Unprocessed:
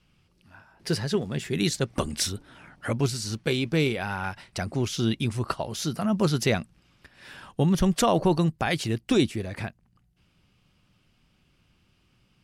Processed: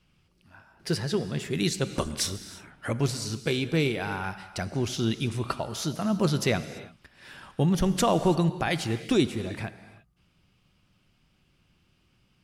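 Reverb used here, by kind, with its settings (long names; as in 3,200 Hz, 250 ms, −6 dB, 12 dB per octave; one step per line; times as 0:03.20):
reverb whose tail is shaped and stops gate 360 ms flat, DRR 11.5 dB
level −1.5 dB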